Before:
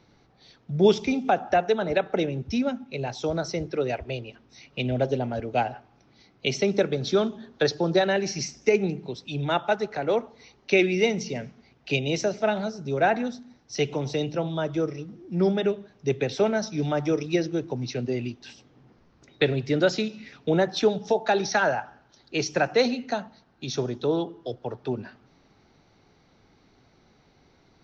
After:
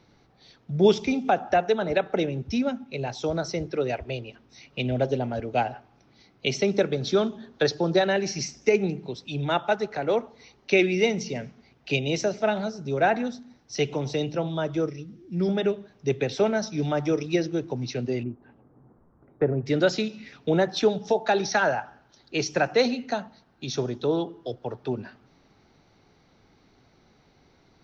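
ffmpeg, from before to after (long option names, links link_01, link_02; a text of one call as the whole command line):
ffmpeg -i in.wav -filter_complex "[0:a]asettb=1/sr,asplit=3[link_01][link_02][link_03];[link_01]atrim=end=14.894[link_04];[link_02]atrim=start=14.89:end=15.49,asetpts=PTS-STARTPTS,afade=type=in:duration=0.004:curve=qsin,afade=type=out:start_time=0.596:duration=0.004:curve=qsin,equalizer=frequency=790:width_type=o:width=1.8:gain=-10.5[link_05];[link_03]atrim=start=15.486[link_06];[link_04][link_05]acrossfade=duration=0.004:curve1=hsin:curve2=qsin[link_07];[link_07][link_06]acrossfade=duration=0.004:curve1=qsin:curve2=hsin,asettb=1/sr,asplit=3[link_08][link_09][link_10];[link_08]atrim=end=18.234[link_11];[link_09]atrim=start=18.23:end=19.66,asetpts=PTS-STARTPTS,afade=type=in:duration=0.004:curve=qsin,afade=type=out:start_time=1.426:duration=0.004:curve=qsin,lowpass=frequency=1300:width=0.5412,lowpass=frequency=1300:width=1.3066[link_12];[link_10]atrim=start=19.656[link_13];[link_11][link_12]acrossfade=duration=0.004:curve1=hsin:curve2=qsin[link_14];[link_14][link_13]acrossfade=duration=0.004:curve1=qsin:curve2=hsin" out.wav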